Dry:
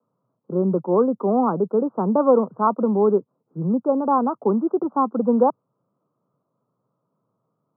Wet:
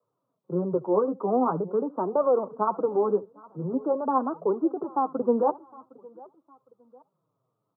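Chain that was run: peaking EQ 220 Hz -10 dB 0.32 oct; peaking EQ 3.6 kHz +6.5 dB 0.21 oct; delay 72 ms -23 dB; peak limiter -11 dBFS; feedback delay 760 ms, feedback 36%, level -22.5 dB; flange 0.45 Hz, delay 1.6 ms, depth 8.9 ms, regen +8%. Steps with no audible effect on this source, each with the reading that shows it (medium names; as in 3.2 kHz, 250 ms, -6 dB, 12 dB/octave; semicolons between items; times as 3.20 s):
peaking EQ 3.6 kHz: input has nothing above 1.4 kHz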